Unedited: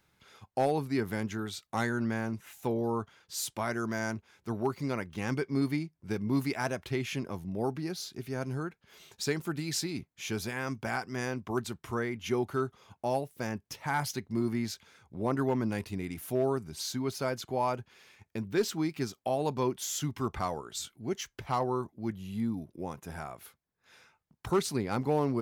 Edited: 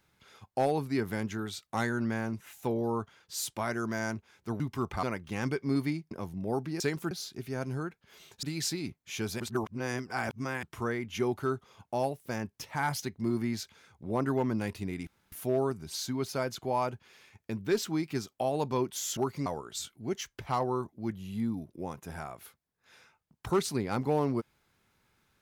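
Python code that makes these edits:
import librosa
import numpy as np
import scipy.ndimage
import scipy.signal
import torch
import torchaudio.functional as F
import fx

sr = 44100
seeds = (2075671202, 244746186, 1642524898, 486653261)

y = fx.edit(x, sr, fx.swap(start_s=4.6, length_s=0.29, other_s=20.03, other_length_s=0.43),
    fx.cut(start_s=5.97, length_s=1.25),
    fx.move(start_s=9.23, length_s=0.31, to_s=7.91),
    fx.reverse_span(start_s=10.51, length_s=1.23),
    fx.insert_room_tone(at_s=16.18, length_s=0.25), tone=tone)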